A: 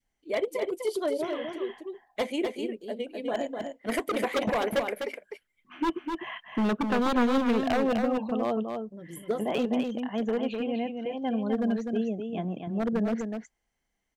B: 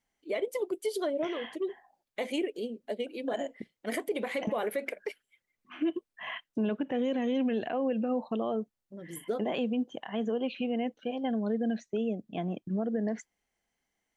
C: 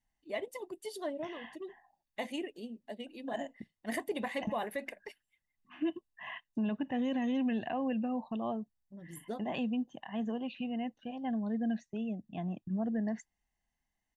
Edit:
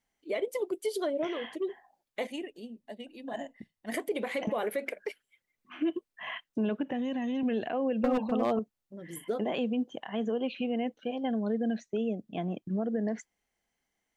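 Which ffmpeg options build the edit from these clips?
-filter_complex "[2:a]asplit=2[a][b];[1:a]asplit=4[c][d][e][f];[c]atrim=end=2.272[g];[a]atrim=start=2.268:end=3.942[h];[d]atrim=start=3.938:end=6.932[i];[b]atrim=start=6.928:end=7.432[j];[e]atrim=start=7.428:end=8.042[k];[0:a]atrim=start=8.038:end=8.592[l];[f]atrim=start=8.588[m];[g][h]acrossfade=d=0.004:c1=hsin:c2=hsin[n];[n][i]acrossfade=d=0.004:c1=hsin:c2=hsin[o];[o][j]acrossfade=d=0.004:c1=hsin:c2=hsin[p];[p][k]acrossfade=d=0.004:c1=hsin:c2=hsin[q];[q][l]acrossfade=d=0.004:c1=hsin:c2=hsin[r];[r][m]acrossfade=d=0.004:c1=hsin:c2=hsin"

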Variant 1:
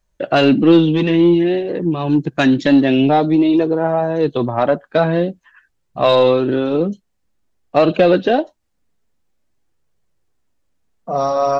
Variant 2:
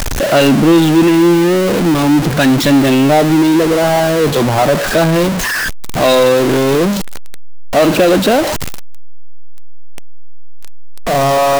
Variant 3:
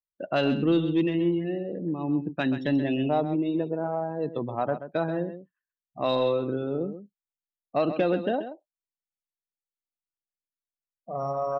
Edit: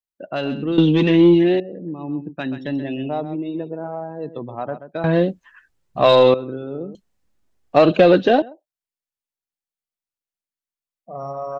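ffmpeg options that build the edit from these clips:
-filter_complex "[0:a]asplit=3[a][b][c];[2:a]asplit=4[d][e][f][g];[d]atrim=end=0.782[h];[a]atrim=start=0.778:end=1.602[i];[e]atrim=start=1.598:end=5.042[j];[b]atrim=start=5.038:end=6.342[k];[f]atrim=start=6.338:end=6.952[l];[c]atrim=start=6.948:end=8.422[m];[g]atrim=start=8.418[n];[h][i]acrossfade=d=0.004:c1=hsin:c2=hsin[o];[o][j]acrossfade=d=0.004:c1=hsin:c2=hsin[p];[p][k]acrossfade=d=0.004:c1=hsin:c2=hsin[q];[q][l]acrossfade=d=0.004:c1=hsin:c2=hsin[r];[r][m]acrossfade=d=0.004:c1=hsin:c2=hsin[s];[s][n]acrossfade=d=0.004:c1=hsin:c2=hsin"

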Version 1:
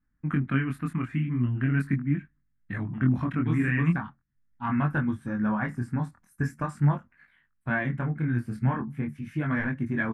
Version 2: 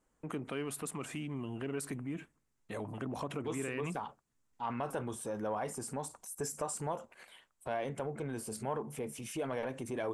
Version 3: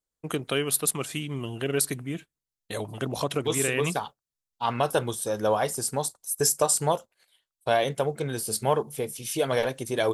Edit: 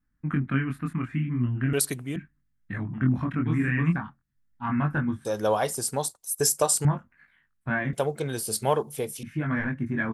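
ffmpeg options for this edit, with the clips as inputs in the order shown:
-filter_complex "[2:a]asplit=3[a][b][c];[0:a]asplit=4[d][e][f][g];[d]atrim=end=1.732[h];[a]atrim=start=1.728:end=2.162[i];[e]atrim=start=2.158:end=5.252[j];[b]atrim=start=5.248:end=6.852[k];[f]atrim=start=6.848:end=7.932[l];[c]atrim=start=7.928:end=9.232[m];[g]atrim=start=9.228[n];[h][i]acrossfade=d=0.004:c1=hsin:c2=hsin[o];[o][j]acrossfade=d=0.004:c1=hsin:c2=hsin[p];[p][k]acrossfade=d=0.004:c1=hsin:c2=hsin[q];[q][l]acrossfade=d=0.004:c1=hsin:c2=hsin[r];[r][m]acrossfade=d=0.004:c1=hsin:c2=hsin[s];[s][n]acrossfade=d=0.004:c1=hsin:c2=hsin"

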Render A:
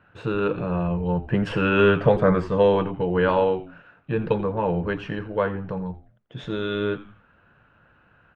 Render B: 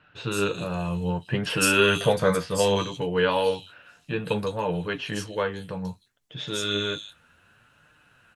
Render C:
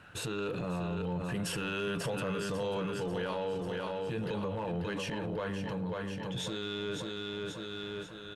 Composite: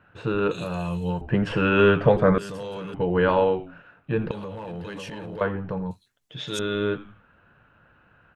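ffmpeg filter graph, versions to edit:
-filter_complex "[1:a]asplit=2[a][b];[2:a]asplit=2[c][d];[0:a]asplit=5[e][f][g][h][i];[e]atrim=end=0.512[j];[a]atrim=start=0.508:end=1.212[k];[f]atrim=start=1.208:end=2.382[l];[c]atrim=start=2.378:end=2.942[m];[g]atrim=start=2.938:end=4.312[n];[d]atrim=start=4.308:end=5.412[o];[h]atrim=start=5.408:end=5.912[p];[b]atrim=start=5.908:end=6.592[q];[i]atrim=start=6.588[r];[j][k]acrossfade=d=0.004:c1=hsin:c2=hsin[s];[s][l]acrossfade=d=0.004:c1=hsin:c2=hsin[t];[t][m]acrossfade=d=0.004:c1=hsin:c2=hsin[u];[u][n]acrossfade=d=0.004:c1=hsin:c2=hsin[v];[v][o]acrossfade=d=0.004:c1=hsin:c2=hsin[w];[w][p]acrossfade=d=0.004:c1=hsin:c2=hsin[x];[x][q]acrossfade=d=0.004:c1=hsin:c2=hsin[y];[y][r]acrossfade=d=0.004:c1=hsin:c2=hsin"

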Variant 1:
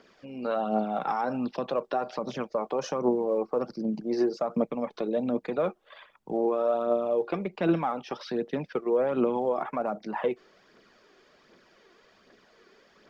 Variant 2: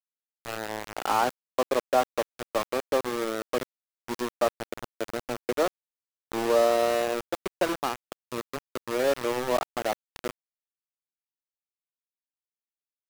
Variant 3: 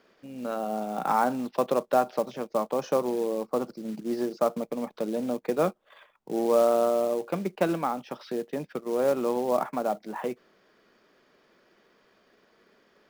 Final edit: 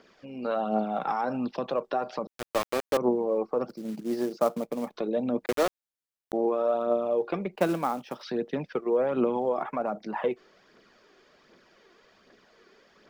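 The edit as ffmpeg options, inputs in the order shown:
-filter_complex "[1:a]asplit=2[a][b];[2:a]asplit=2[c][d];[0:a]asplit=5[e][f][g][h][i];[e]atrim=end=2.272[j];[a]atrim=start=2.268:end=2.972[k];[f]atrim=start=2.968:end=3.692[l];[c]atrim=start=3.688:end=4.962[m];[g]atrim=start=4.958:end=5.462[n];[b]atrim=start=5.458:end=6.332[o];[h]atrim=start=6.328:end=7.562[p];[d]atrim=start=7.558:end=8.232[q];[i]atrim=start=8.228[r];[j][k]acrossfade=d=0.004:c1=hsin:c2=hsin[s];[s][l]acrossfade=d=0.004:c1=hsin:c2=hsin[t];[t][m]acrossfade=d=0.004:c1=hsin:c2=hsin[u];[u][n]acrossfade=d=0.004:c1=hsin:c2=hsin[v];[v][o]acrossfade=d=0.004:c1=hsin:c2=hsin[w];[w][p]acrossfade=d=0.004:c1=hsin:c2=hsin[x];[x][q]acrossfade=d=0.004:c1=hsin:c2=hsin[y];[y][r]acrossfade=d=0.004:c1=hsin:c2=hsin"

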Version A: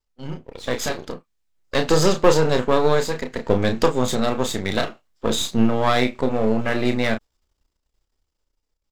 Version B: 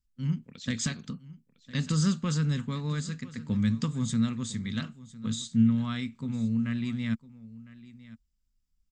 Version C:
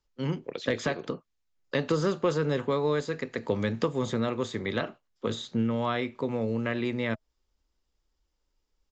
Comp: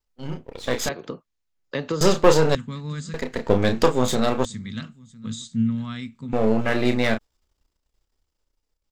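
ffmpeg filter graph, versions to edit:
-filter_complex "[1:a]asplit=2[a][b];[0:a]asplit=4[c][d][e][f];[c]atrim=end=0.892[g];[2:a]atrim=start=0.888:end=2.012[h];[d]atrim=start=2.008:end=2.552[i];[a]atrim=start=2.548:end=3.142[j];[e]atrim=start=3.138:end=4.452[k];[b]atrim=start=4.448:end=6.332[l];[f]atrim=start=6.328[m];[g][h]acrossfade=d=0.004:c1=hsin:c2=hsin[n];[n][i]acrossfade=d=0.004:c1=hsin:c2=hsin[o];[o][j]acrossfade=d=0.004:c1=hsin:c2=hsin[p];[p][k]acrossfade=d=0.004:c1=hsin:c2=hsin[q];[q][l]acrossfade=d=0.004:c1=hsin:c2=hsin[r];[r][m]acrossfade=d=0.004:c1=hsin:c2=hsin"

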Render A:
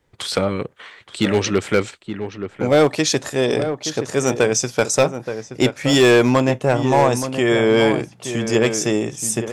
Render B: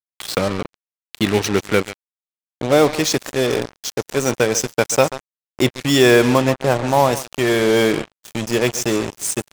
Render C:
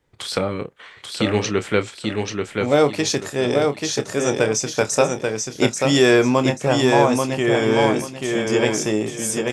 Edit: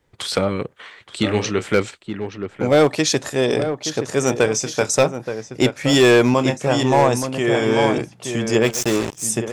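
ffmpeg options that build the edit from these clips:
-filter_complex "[2:a]asplit=4[a][b][c][d];[0:a]asplit=6[e][f][g][h][i][j];[e]atrim=end=1.232[k];[a]atrim=start=1.228:end=1.712[l];[f]atrim=start=1.708:end=4.462[m];[b]atrim=start=4.458:end=4.892[n];[g]atrim=start=4.888:end=6.342[o];[c]atrim=start=6.338:end=6.832[p];[h]atrim=start=6.828:end=7.382[q];[d]atrim=start=7.378:end=7.982[r];[i]atrim=start=7.978:end=8.76[s];[1:a]atrim=start=8.6:end=9.28[t];[j]atrim=start=9.12[u];[k][l]acrossfade=d=0.004:c1=hsin:c2=hsin[v];[v][m]acrossfade=d=0.004:c1=hsin:c2=hsin[w];[w][n]acrossfade=d=0.004:c1=hsin:c2=hsin[x];[x][o]acrossfade=d=0.004:c1=hsin:c2=hsin[y];[y][p]acrossfade=d=0.004:c1=hsin:c2=hsin[z];[z][q]acrossfade=d=0.004:c1=hsin:c2=hsin[aa];[aa][r]acrossfade=d=0.004:c1=hsin:c2=hsin[ab];[ab][s]acrossfade=d=0.004:c1=hsin:c2=hsin[ac];[ac][t]acrossfade=d=0.16:c1=tri:c2=tri[ad];[ad][u]acrossfade=d=0.16:c1=tri:c2=tri"

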